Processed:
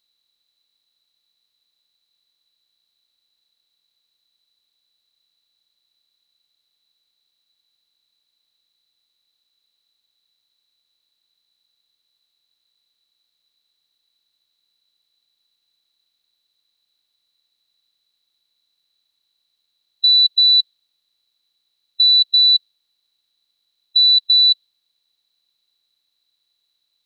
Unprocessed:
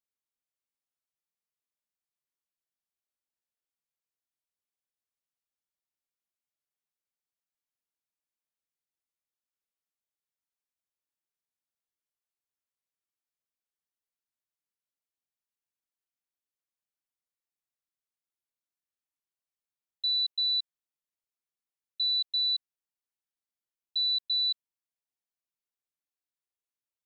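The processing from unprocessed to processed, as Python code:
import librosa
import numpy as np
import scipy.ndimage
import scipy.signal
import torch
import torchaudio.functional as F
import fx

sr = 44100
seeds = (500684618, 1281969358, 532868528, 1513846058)

y = fx.bin_compress(x, sr, power=0.6)
y = fx.dynamic_eq(y, sr, hz=3900.0, q=2.4, threshold_db=-40.0, ratio=4.0, max_db=6)
y = y * librosa.db_to_amplitude(9.0)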